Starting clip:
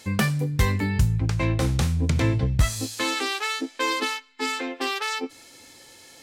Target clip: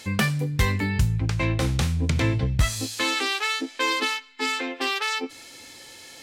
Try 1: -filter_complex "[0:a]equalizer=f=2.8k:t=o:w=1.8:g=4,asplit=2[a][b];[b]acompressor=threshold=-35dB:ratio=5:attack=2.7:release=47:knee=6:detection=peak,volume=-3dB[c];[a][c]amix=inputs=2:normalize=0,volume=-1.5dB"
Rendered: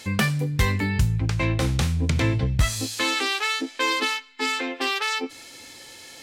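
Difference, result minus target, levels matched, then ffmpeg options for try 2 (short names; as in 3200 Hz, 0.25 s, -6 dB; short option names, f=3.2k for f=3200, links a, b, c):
compressor: peak gain reduction -8 dB
-filter_complex "[0:a]equalizer=f=2.8k:t=o:w=1.8:g=4,asplit=2[a][b];[b]acompressor=threshold=-45dB:ratio=5:attack=2.7:release=47:knee=6:detection=peak,volume=-3dB[c];[a][c]amix=inputs=2:normalize=0,volume=-1.5dB"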